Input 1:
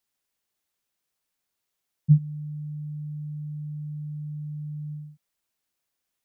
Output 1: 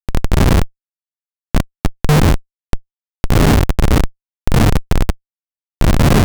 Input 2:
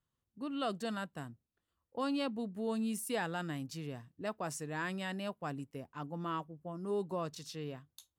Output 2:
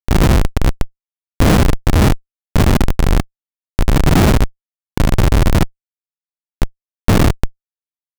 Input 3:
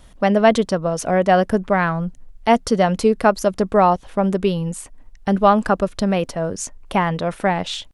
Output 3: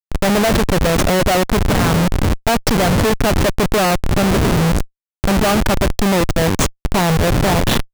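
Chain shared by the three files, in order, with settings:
wind on the microphone 210 Hz −25 dBFS
comparator with hysteresis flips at −23.5 dBFS
loudness normalisation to −16 LKFS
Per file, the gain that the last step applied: +15.0, +15.5, +4.0 decibels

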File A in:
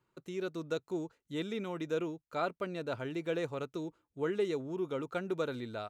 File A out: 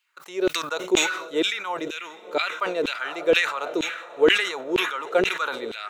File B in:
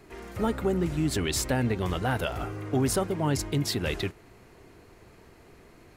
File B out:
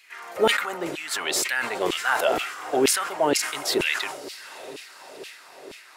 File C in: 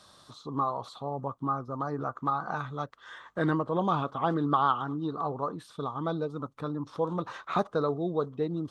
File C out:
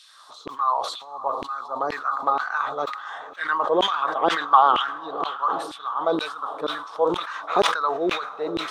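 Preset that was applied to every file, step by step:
feedback delay with all-pass diffusion 666 ms, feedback 57%, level −15.5 dB
auto-filter high-pass saw down 2.1 Hz 360–2,900 Hz
level that may fall only so fast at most 69 dB per second
loudness normalisation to −24 LKFS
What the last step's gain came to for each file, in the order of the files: +10.0, +4.5, +4.5 decibels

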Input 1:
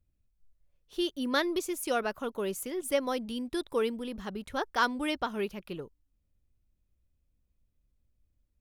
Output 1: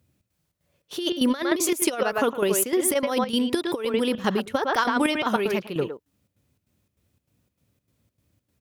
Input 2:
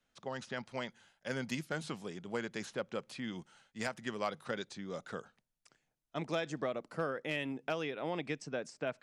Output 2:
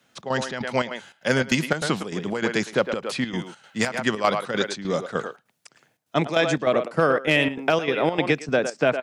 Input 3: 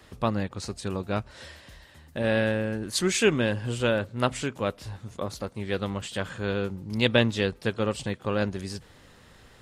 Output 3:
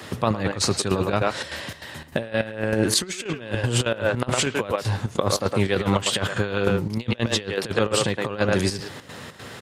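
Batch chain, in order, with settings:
dynamic equaliser 210 Hz, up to −4 dB, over −40 dBFS, Q 1.1
high-pass filter 96 Hz 24 dB per octave
far-end echo of a speakerphone 110 ms, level −8 dB
square-wave tremolo 3.3 Hz, depth 65%, duty 70%
compressor whose output falls as the input rises −34 dBFS, ratio −0.5
loudness normalisation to −24 LKFS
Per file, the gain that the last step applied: +13.0, +17.0, +11.5 decibels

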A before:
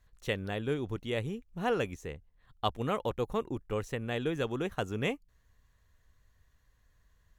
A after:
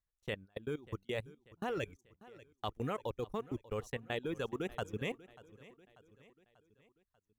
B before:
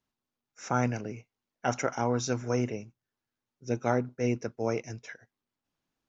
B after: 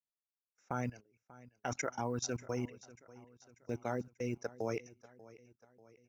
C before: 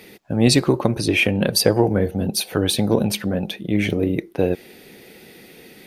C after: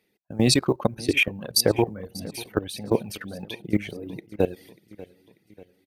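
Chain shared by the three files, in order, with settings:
log-companded quantiser 8 bits
reverb reduction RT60 1.4 s
output level in coarse steps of 18 dB
noise gate −47 dBFS, range −18 dB
repeating echo 590 ms, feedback 51%, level −19.5 dB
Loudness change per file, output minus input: −6.5, −8.5, −5.0 LU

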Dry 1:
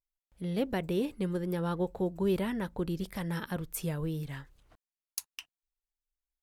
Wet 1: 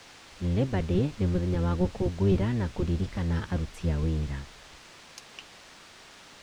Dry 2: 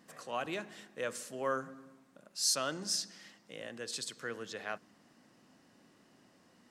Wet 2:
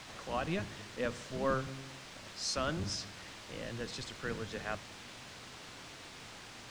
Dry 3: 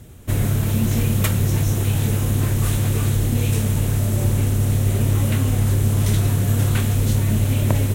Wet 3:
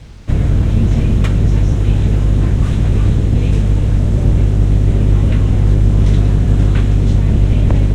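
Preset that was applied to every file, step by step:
sub-octave generator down 1 octave, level +2 dB
low-shelf EQ 230 Hz +3 dB
notch filter 4,500 Hz, Q 23
in parallel at −3.5 dB: bit-depth reduction 6 bits, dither triangular
on the sum: high-frequency loss of the air 120 metres
level −3.5 dB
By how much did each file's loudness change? +5.0, −2.5, +6.0 LU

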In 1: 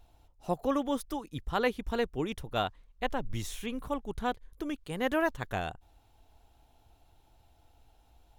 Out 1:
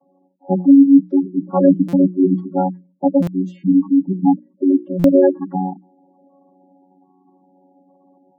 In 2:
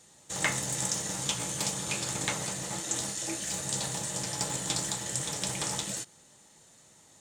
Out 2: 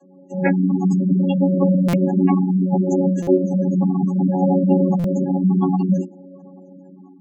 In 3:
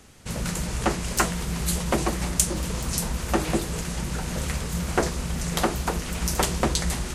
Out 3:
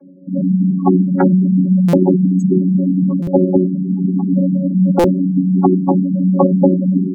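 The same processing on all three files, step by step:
channel vocoder with a chord as carrier bare fifth, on F#3
gate on every frequency bin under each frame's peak −10 dB strong
high-pass filter 160 Hz 24 dB per octave
tilt shelving filter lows +9 dB, about 1,200 Hz
mains-hum notches 60/120/180/240/300/360 Hz
automatic gain control gain up to 6 dB
boost into a limiter +8.5 dB
buffer that repeats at 0:01.88/0:03.22/0:04.99, samples 256, times 8
level −1 dB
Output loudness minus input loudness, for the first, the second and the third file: +18.0, +13.0, +12.5 LU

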